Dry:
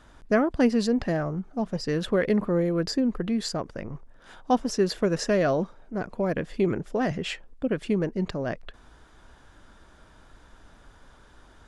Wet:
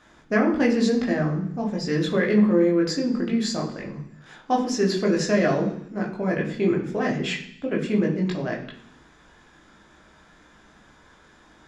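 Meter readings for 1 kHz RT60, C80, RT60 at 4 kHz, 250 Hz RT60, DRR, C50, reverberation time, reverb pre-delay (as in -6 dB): 0.70 s, 11.5 dB, 0.85 s, 0.85 s, -1.5 dB, 8.5 dB, 0.65 s, 15 ms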